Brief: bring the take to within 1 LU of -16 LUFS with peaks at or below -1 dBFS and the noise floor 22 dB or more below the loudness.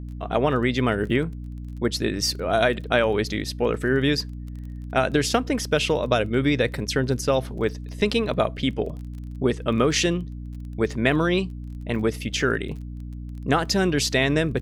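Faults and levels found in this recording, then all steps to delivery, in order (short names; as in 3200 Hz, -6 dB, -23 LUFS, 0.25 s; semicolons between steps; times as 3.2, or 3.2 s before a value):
ticks 23/s; hum 60 Hz; harmonics up to 300 Hz; hum level -32 dBFS; loudness -23.5 LUFS; peak -5.0 dBFS; loudness target -16.0 LUFS
-> de-click; notches 60/120/180/240/300 Hz; gain +7.5 dB; limiter -1 dBFS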